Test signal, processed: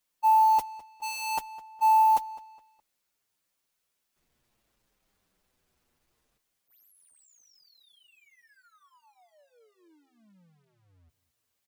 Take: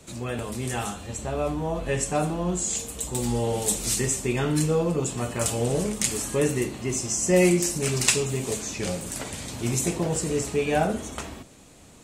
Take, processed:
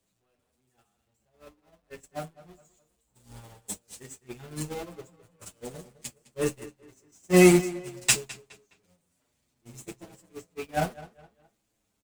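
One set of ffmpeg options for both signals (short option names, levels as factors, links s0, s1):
-filter_complex "[0:a]aeval=exprs='val(0)+0.5*0.106*sgn(val(0))':c=same,agate=range=0.00251:threshold=0.158:ratio=16:detection=peak,asplit=2[s0][s1];[s1]adelay=208,lowpass=f=4400:p=1,volume=0.141,asplit=2[s2][s3];[s3]adelay=208,lowpass=f=4400:p=1,volume=0.36,asplit=2[s4][s5];[s5]adelay=208,lowpass=f=4400:p=1,volume=0.36[s6];[s2][s4][s6]amix=inputs=3:normalize=0[s7];[s0][s7]amix=inputs=2:normalize=0,asplit=2[s8][s9];[s9]adelay=7.3,afreqshift=-0.58[s10];[s8][s10]amix=inputs=2:normalize=1,volume=1.41"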